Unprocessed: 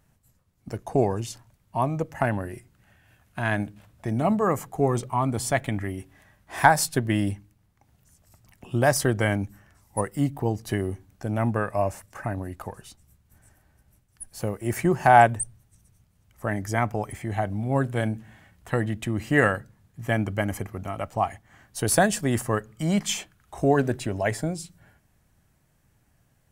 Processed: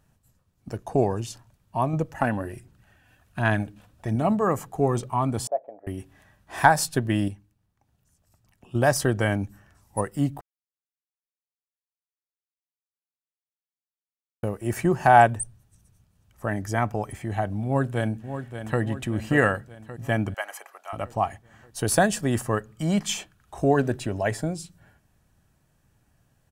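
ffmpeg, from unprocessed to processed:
-filter_complex "[0:a]asettb=1/sr,asplit=3[a][b][c];[a]atrim=end=1.934[d];[b]atrim=start=1.93:end=4.16,asetpts=PTS-STARTPTS,afade=t=in:d=0.004:c=qsin,afade=t=out:st=2.226:d=0.004:c=qsin,aphaser=in_gain=1:out_gain=1:delay=4.1:decay=0.39:speed=1.3:type=sinusoidal[e];[c]atrim=start=4.156[f];[d][e]acrossfade=d=0.004:c1=hsin:c2=qsin[g];[g][f]acrossfade=d=0.004:c1=qsin:c2=hsin,asettb=1/sr,asplit=3[h][i][j];[h]atrim=end=5.474[k];[i]atrim=start=5.47:end=5.87,asetpts=PTS-STARTPTS,afade=t=in:d=0.004:c=qsin,afade=t=out:st=0.396:d=0.004:c=qsin,asuperpass=centerf=590:order=4:qfactor=2.3[l];[j]atrim=start=5.866[m];[k][l]acrossfade=d=0.004:c1=hsin:c2=qsin[n];[n][m]acrossfade=d=0.004:c1=qsin:c2=hsin,asplit=2[o][p];[p]afade=t=in:st=17.65:d=0.01,afade=t=out:st=18.8:d=0.01,aecho=0:1:580|1160|1740|2320|2900|3480:0.334965|0.184231|0.101327|0.0557299|0.0306514|0.0168583[q];[o][q]amix=inputs=2:normalize=0,asettb=1/sr,asplit=3[r][s][t];[r]atrim=end=20.344[u];[s]atrim=start=20.34:end=20.93,asetpts=PTS-STARTPTS,afade=t=in:d=0.004:c=qsin,afade=t=out:st=0.586:d=0.004:c=qsin,highpass=f=700:w=0.5412,highpass=f=700:w=1.3066[v];[t]atrim=start=20.926[w];[u][v]acrossfade=d=0.004:c1=hsin:c2=qsin[x];[x][w]acrossfade=d=0.004:c1=qsin:c2=hsin,asplit=5[y][z][aa][ab][ac];[y]atrim=end=7.282[ad];[z]atrim=start=7.278:end=8.752,asetpts=PTS-STARTPTS,volume=-7dB[ae];[aa]atrim=start=8.748:end=10.41,asetpts=PTS-STARTPTS,afade=t=out:st=1.658:d=0.004:c=hsin[af];[ab]atrim=start=10.41:end=14.43,asetpts=PTS-STARTPTS,volume=0[ag];[ac]atrim=start=14.43,asetpts=PTS-STARTPTS,afade=t=in:d=0.004:c=hsin[ah];[ad][ae]acrossfade=d=0.004:c1=hsin:c2=hsin[ai];[af][ag][ah]concat=n=3:v=0:a=1[aj];[ai][aj]acrossfade=d=0.004:c1=hsin:c2=hsin,highshelf=f=10k:g=-4,bandreject=f=2.1k:w=10"

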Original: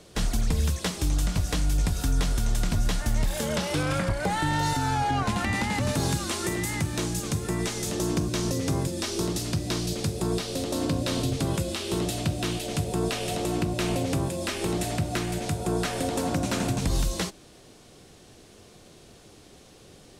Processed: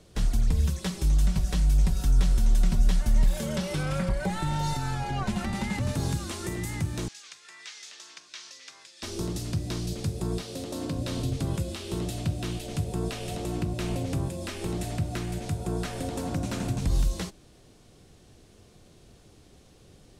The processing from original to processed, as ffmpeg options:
-filter_complex "[0:a]asettb=1/sr,asplit=3[a][b][c];[a]atrim=end=0.664[d];[b]atrim=start=0.66:end=5.77,asetpts=PTS-STARTPTS,afade=t=in:d=0.004:c=qsin,afade=t=out:st=5.106:d=0.004:c=qsin,aecho=1:1:5.3:0.65,atrim=end_sample=225351[e];[c]atrim=start=5.766[f];[d][e]acrossfade=d=0.004:c1=hsin:c2=qsin[g];[g][f]acrossfade=d=0.004:c1=qsin:c2=hsin,asettb=1/sr,asplit=3[h][i][j];[h]atrim=end=7.084[k];[i]atrim=start=7.08:end=9.03,asetpts=PTS-STARTPTS,afade=t=in:d=0.004:c=qsin,afade=t=out:st=1.946:d=0.004:c=qsin,asuperpass=centerf=3100:order=4:qfactor=0.72[l];[j]atrim=start=9.026[m];[k][l]acrossfade=d=0.004:c1=hsin:c2=qsin[n];[n][m]acrossfade=d=0.004:c1=qsin:c2=hsin,asettb=1/sr,asplit=3[o][p][q];[o]atrim=end=10.424[r];[p]atrim=start=10.42:end=10.97,asetpts=PTS-STARTPTS,afade=t=in:d=0.004:c=qsin,afade=t=out:st=0.546:d=0.004:c=qsin,highpass=f=150:p=1[s];[q]atrim=start=10.966[t];[r][s]acrossfade=d=0.004:c1=hsin:c2=qsin[u];[u][t]acrossfade=d=0.004:c1=qsin:c2=hsin,lowshelf=f=160:g=10,volume=-7dB"

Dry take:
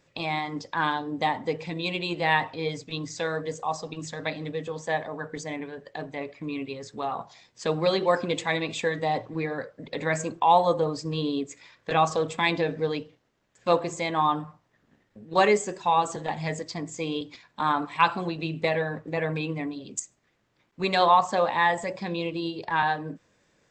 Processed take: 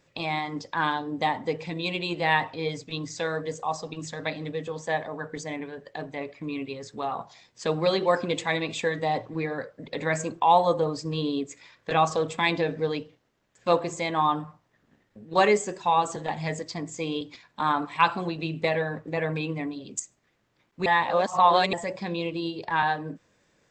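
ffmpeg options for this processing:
-filter_complex "[0:a]asplit=3[a][b][c];[a]atrim=end=20.862[d];[b]atrim=start=20.858:end=21.732,asetpts=PTS-STARTPTS,areverse[e];[c]atrim=start=21.728[f];[d][e]acrossfade=d=0.004:c1=hsin:c2=hsin[g];[g][f]acrossfade=d=0.004:c1=hsin:c2=hsin"

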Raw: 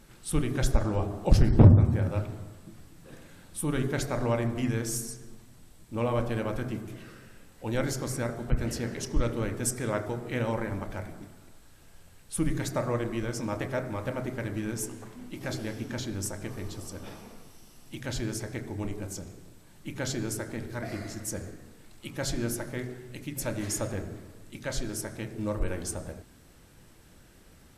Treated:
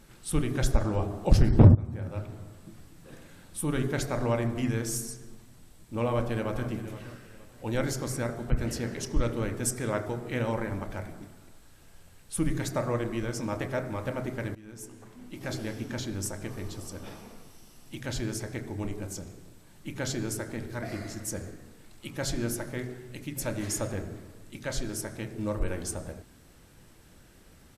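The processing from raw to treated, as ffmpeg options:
-filter_complex "[0:a]asplit=2[a][b];[b]afade=t=in:st=6.08:d=0.01,afade=t=out:st=6.69:d=0.01,aecho=0:1:470|940|1410:0.211349|0.0634047|0.0190214[c];[a][c]amix=inputs=2:normalize=0,asplit=3[d][e][f];[d]atrim=end=1.75,asetpts=PTS-STARTPTS,afade=t=out:st=1.746:d=0.004:c=hsin:silence=0.149624[g];[e]atrim=start=1.75:end=14.55,asetpts=PTS-STARTPTS,afade=t=in:d=0.92:silence=0.149624,afade=t=out:st=12.796:d=0.004:c=hsin:silence=0.1[h];[f]atrim=start=14.55,asetpts=PTS-STARTPTS,afade=t=in:d=1.03:silence=0.1[i];[g][h][i]concat=n=3:v=0:a=1"

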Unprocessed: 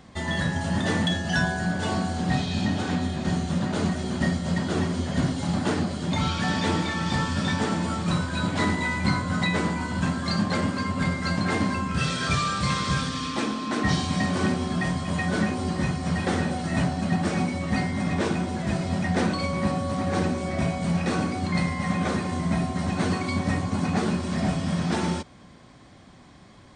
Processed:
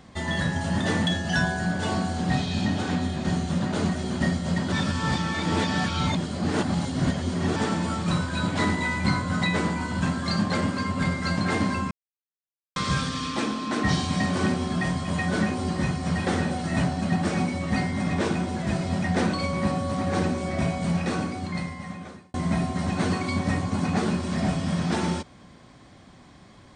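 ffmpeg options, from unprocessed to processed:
-filter_complex "[0:a]asplit=6[a][b][c][d][e][f];[a]atrim=end=4.722[g];[b]atrim=start=4.718:end=7.562,asetpts=PTS-STARTPTS,areverse[h];[c]atrim=start=7.558:end=11.91,asetpts=PTS-STARTPTS,afade=t=out:st=4.348:d=0.004:c=hsin[i];[d]atrim=start=11.91:end=12.76,asetpts=PTS-STARTPTS,volume=0[j];[e]atrim=start=12.76:end=22.34,asetpts=PTS-STARTPTS,afade=t=in:d=0.004:c=hsin,afade=t=out:st=8.11:d=1.47[k];[f]atrim=start=22.34,asetpts=PTS-STARTPTS,afade=t=in:d=0.004:c=hsin[l];[g][h]acrossfade=d=0.004:c1=hsin:c2=hsin[m];[i][j][k][l]concat=n=4:v=0:a=1[n];[m][n]acrossfade=d=0.004:c1=hsin:c2=hsin"

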